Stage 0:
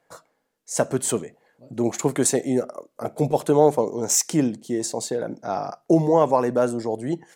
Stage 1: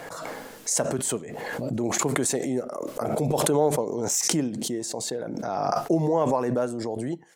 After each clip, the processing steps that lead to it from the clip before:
background raised ahead of every attack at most 22 dB per second
level −6 dB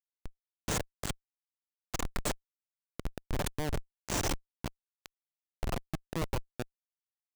harmonic generator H 8 −22 dB, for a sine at −1 dBFS
low-shelf EQ 480 Hz −9 dB
comparator with hysteresis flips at −22 dBFS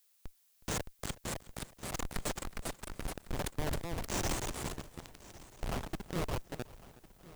delay with pitch and tempo change per echo 645 ms, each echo +2 semitones, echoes 2
echo machine with several playback heads 368 ms, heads first and third, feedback 41%, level −20 dB
background noise blue −66 dBFS
level −3.5 dB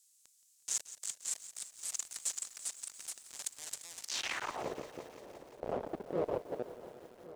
in parallel at −6 dB: hard clipping −39 dBFS, distortion −6 dB
on the sum: band-pass filter sweep 7,400 Hz → 510 Hz, 0:04.01–0:04.68
feedback echo at a low word length 173 ms, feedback 80%, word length 10 bits, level −14.5 dB
level +7 dB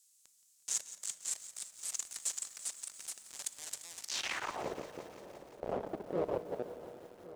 convolution reverb RT60 2.5 s, pre-delay 5 ms, DRR 14.5 dB

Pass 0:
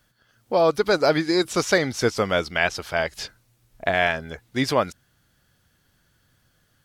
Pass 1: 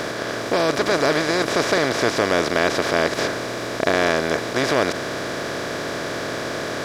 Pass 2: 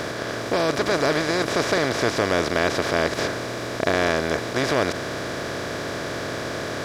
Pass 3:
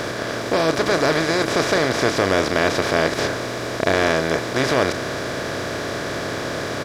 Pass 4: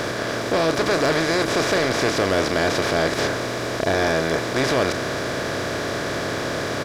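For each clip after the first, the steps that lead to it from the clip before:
compressor on every frequency bin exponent 0.2; level −6.5 dB
parametric band 76 Hz +7 dB 1.5 octaves; level −2.5 dB
double-tracking delay 31 ms −10.5 dB; level +2.5 dB
soft clipping −13.5 dBFS, distortion −13 dB; level +1 dB

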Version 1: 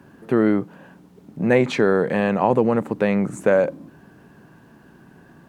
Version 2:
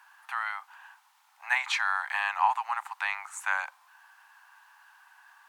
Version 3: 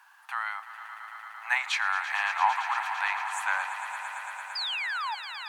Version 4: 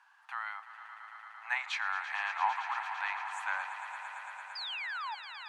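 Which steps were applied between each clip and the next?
Butterworth high-pass 820 Hz 72 dB per octave
sound drawn into the spectrogram fall, 0:04.55–0:05.15, 810–5,100 Hz −32 dBFS; echo that builds up and dies away 113 ms, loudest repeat 5, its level −13.5 dB
high-frequency loss of the air 65 metres; level −6 dB

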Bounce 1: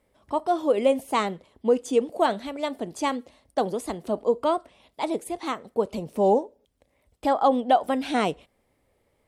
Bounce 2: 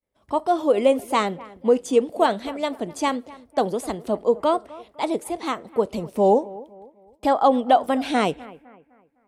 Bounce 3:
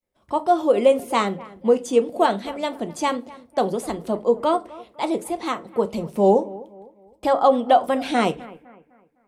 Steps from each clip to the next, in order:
downward expander −56 dBFS; bucket-brigade delay 254 ms, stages 4,096, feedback 38%, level −20 dB; level +3 dB
convolution reverb RT60 0.30 s, pre-delay 5 ms, DRR 9 dB

